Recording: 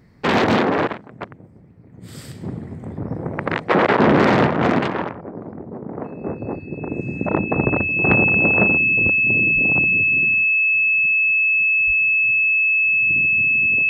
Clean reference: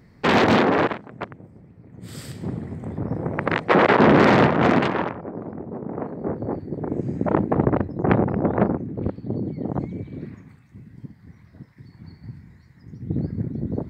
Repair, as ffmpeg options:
-filter_complex "[0:a]bandreject=f=2600:w=30,asplit=3[s0][s1][s2];[s0]afade=t=out:st=9.54:d=0.02[s3];[s1]highpass=f=140:w=0.5412,highpass=f=140:w=1.3066,afade=t=in:st=9.54:d=0.02,afade=t=out:st=9.66:d=0.02[s4];[s2]afade=t=in:st=9.66:d=0.02[s5];[s3][s4][s5]amix=inputs=3:normalize=0,asplit=3[s6][s7][s8];[s6]afade=t=out:st=11.86:d=0.02[s9];[s7]highpass=f=140:w=0.5412,highpass=f=140:w=1.3066,afade=t=in:st=11.86:d=0.02,afade=t=out:st=11.98:d=0.02[s10];[s8]afade=t=in:st=11.98:d=0.02[s11];[s9][s10][s11]amix=inputs=3:normalize=0,asetnsamples=n=441:p=0,asendcmd='10.44 volume volume 10.5dB',volume=1"

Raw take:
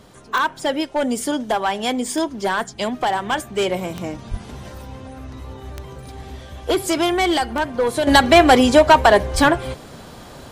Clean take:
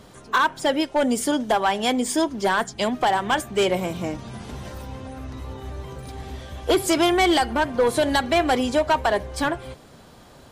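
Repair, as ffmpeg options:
-filter_complex "[0:a]adeclick=t=4,asplit=3[s0][s1][s2];[s0]afade=t=out:st=4.3:d=0.02[s3];[s1]highpass=f=140:w=0.5412,highpass=f=140:w=1.3066,afade=t=in:st=4.3:d=0.02,afade=t=out:st=4.42:d=0.02[s4];[s2]afade=t=in:st=4.42:d=0.02[s5];[s3][s4][s5]amix=inputs=3:normalize=0,asplit=3[s6][s7][s8];[s6]afade=t=out:st=9.33:d=0.02[s9];[s7]highpass=f=140:w=0.5412,highpass=f=140:w=1.3066,afade=t=in:st=9.33:d=0.02,afade=t=out:st=9.45:d=0.02[s10];[s8]afade=t=in:st=9.45:d=0.02[s11];[s9][s10][s11]amix=inputs=3:normalize=0,asetnsamples=n=441:p=0,asendcmd='8.07 volume volume -9dB',volume=1"

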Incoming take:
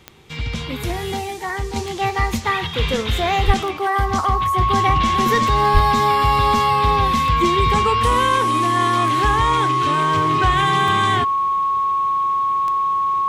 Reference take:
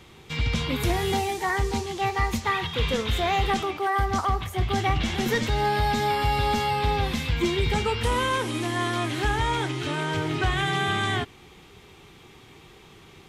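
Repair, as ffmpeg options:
-filter_complex "[0:a]adeclick=t=4,bandreject=f=1100:w=30,asplit=3[s0][s1][s2];[s0]afade=t=out:st=3.46:d=0.02[s3];[s1]highpass=f=140:w=0.5412,highpass=f=140:w=1.3066,afade=t=in:st=3.46:d=0.02,afade=t=out:st=3.58:d=0.02[s4];[s2]afade=t=in:st=3.58:d=0.02[s5];[s3][s4][s5]amix=inputs=3:normalize=0,asplit=3[s6][s7][s8];[s6]afade=t=out:st=5.73:d=0.02[s9];[s7]highpass=f=140:w=0.5412,highpass=f=140:w=1.3066,afade=t=in:st=5.73:d=0.02,afade=t=out:st=5.85:d=0.02[s10];[s8]afade=t=in:st=5.85:d=0.02[s11];[s9][s10][s11]amix=inputs=3:normalize=0,asetnsamples=n=441:p=0,asendcmd='1.76 volume volume -5dB',volume=1"

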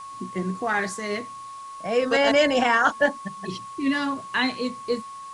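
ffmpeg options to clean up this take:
-af "bandreject=f=1100:w=30,afwtdn=0.0032"

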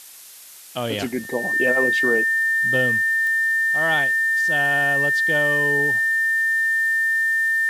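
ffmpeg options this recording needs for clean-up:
-af "adeclick=t=4,bandreject=f=1800:w=30,afftdn=nr=30:nf=-37"

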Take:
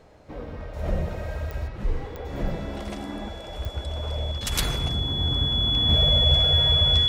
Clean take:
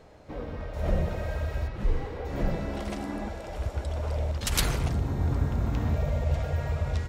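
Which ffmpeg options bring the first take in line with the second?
-af "adeclick=t=4,bandreject=f=3400:w=30,asetnsamples=n=441:p=0,asendcmd='5.89 volume volume -4.5dB',volume=1"

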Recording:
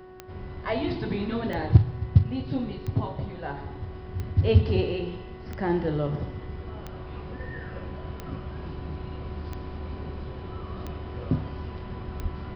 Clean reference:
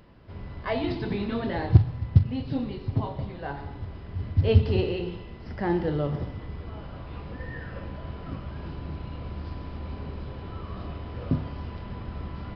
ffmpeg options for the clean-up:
-filter_complex "[0:a]adeclick=t=4,bandreject=f=370.6:t=h:w=4,bandreject=f=741.2:t=h:w=4,bandreject=f=1111.8:t=h:w=4,bandreject=f=1482.4:t=h:w=4,bandreject=f=1853:t=h:w=4,asplit=3[s0][s1][s2];[s0]afade=t=out:st=12.22:d=0.02[s3];[s1]highpass=f=140:w=0.5412,highpass=f=140:w=1.3066,afade=t=in:st=12.22:d=0.02,afade=t=out:st=12.34:d=0.02[s4];[s2]afade=t=in:st=12.34:d=0.02[s5];[s3][s4][s5]amix=inputs=3:normalize=0"

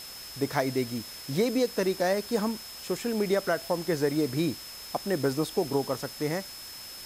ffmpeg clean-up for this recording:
-af "bandreject=f=5200:w=30,afftdn=nr=30:nf=-43"

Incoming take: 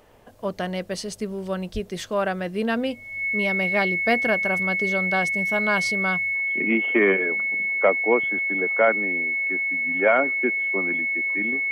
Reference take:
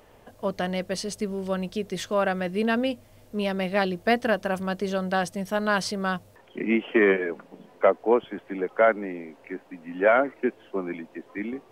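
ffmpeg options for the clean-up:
-filter_complex "[0:a]bandreject=f=2200:w=30,asplit=3[s0][s1][s2];[s0]afade=t=out:st=1.73:d=0.02[s3];[s1]highpass=f=140:w=0.5412,highpass=f=140:w=1.3066,afade=t=in:st=1.73:d=0.02,afade=t=out:st=1.85:d=0.02[s4];[s2]afade=t=in:st=1.85:d=0.02[s5];[s3][s4][s5]amix=inputs=3:normalize=0"

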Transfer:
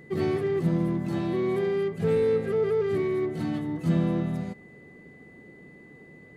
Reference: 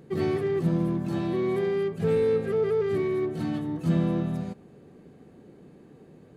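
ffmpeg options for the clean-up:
-af "bandreject=f=2000:w=30"

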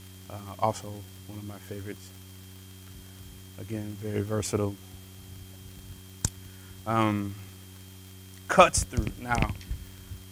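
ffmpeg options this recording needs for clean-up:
-af "adeclick=t=4,bandreject=f=94.3:t=h:w=4,bandreject=f=188.6:t=h:w=4,bandreject=f=282.9:t=h:w=4,bandreject=f=377.2:t=h:w=4,bandreject=f=3200:w=30,afwtdn=0.0022"

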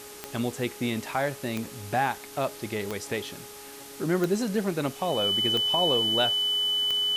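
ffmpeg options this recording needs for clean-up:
-af "adeclick=t=4,bandreject=f=415.3:t=h:w=4,bandreject=f=830.6:t=h:w=4,bandreject=f=1245.9:t=h:w=4,bandreject=f=3000:w=30,afftdn=nr=29:nf=-44"

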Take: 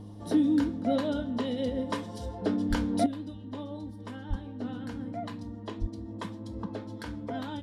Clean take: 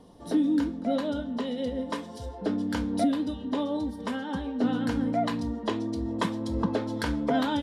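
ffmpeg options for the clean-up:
-filter_complex "[0:a]bandreject=f=103.4:t=h:w=4,bandreject=f=206.8:t=h:w=4,bandreject=f=310.2:t=h:w=4,asplit=3[s0][s1][s2];[s0]afade=t=out:st=2.69:d=0.02[s3];[s1]highpass=f=140:w=0.5412,highpass=f=140:w=1.3066,afade=t=in:st=2.69:d=0.02,afade=t=out:st=2.81:d=0.02[s4];[s2]afade=t=in:st=2.81:d=0.02[s5];[s3][s4][s5]amix=inputs=3:normalize=0,asplit=3[s6][s7][s8];[s6]afade=t=out:st=4.29:d=0.02[s9];[s7]highpass=f=140:w=0.5412,highpass=f=140:w=1.3066,afade=t=in:st=4.29:d=0.02,afade=t=out:st=4.41:d=0.02[s10];[s8]afade=t=in:st=4.41:d=0.02[s11];[s9][s10][s11]amix=inputs=3:normalize=0,asplit=3[s12][s13][s14];[s12]afade=t=out:st=5.8:d=0.02[s15];[s13]highpass=f=140:w=0.5412,highpass=f=140:w=1.3066,afade=t=in:st=5.8:d=0.02,afade=t=out:st=5.92:d=0.02[s16];[s14]afade=t=in:st=5.92:d=0.02[s17];[s15][s16][s17]amix=inputs=3:normalize=0,asetnsamples=n=441:p=0,asendcmd='3.06 volume volume 10.5dB',volume=1"

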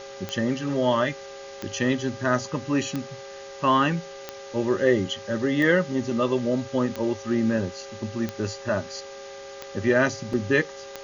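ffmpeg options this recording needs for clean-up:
-af "adeclick=t=4,bandreject=f=398.3:t=h:w=4,bandreject=f=796.6:t=h:w=4,bandreject=f=1194.9:t=h:w=4,bandreject=f=1593.2:t=h:w=4,bandreject=f=1991.5:t=h:w=4,bandreject=f=550:w=30,afftdn=nr=29:nf=-40"

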